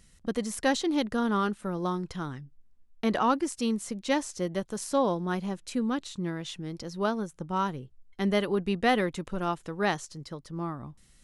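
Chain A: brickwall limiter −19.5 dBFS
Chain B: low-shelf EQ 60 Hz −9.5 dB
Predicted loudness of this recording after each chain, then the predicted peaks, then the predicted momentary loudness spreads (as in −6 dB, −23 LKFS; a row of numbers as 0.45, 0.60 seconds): −32.0, −30.5 LKFS; −19.5, −11.5 dBFS; 9, 12 LU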